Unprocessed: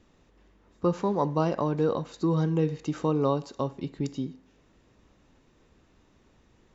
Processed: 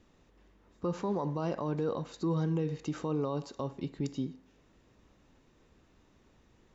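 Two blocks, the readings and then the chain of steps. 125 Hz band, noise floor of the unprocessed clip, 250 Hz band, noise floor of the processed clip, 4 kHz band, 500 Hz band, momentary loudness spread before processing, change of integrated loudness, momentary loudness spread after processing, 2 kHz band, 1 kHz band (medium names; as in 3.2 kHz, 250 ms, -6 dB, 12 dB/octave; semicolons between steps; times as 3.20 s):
-5.5 dB, -63 dBFS, -5.5 dB, -65 dBFS, -4.5 dB, -7.0 dB, 8 LU, -6.0 dB, 7 LU, -5.0 dB, -8.0 dB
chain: peak limiter -21 dBFS, peak gain reduction 9 dB; trim -2.5 dB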